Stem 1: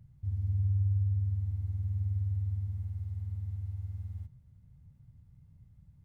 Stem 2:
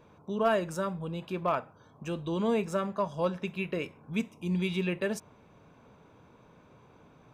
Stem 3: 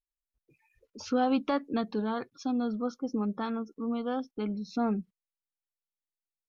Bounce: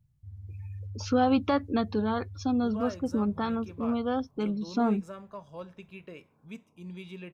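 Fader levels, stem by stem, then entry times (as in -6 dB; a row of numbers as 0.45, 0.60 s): -11.5, -12.5, +3.0 dB; 0.00, 2.35, 0.00 s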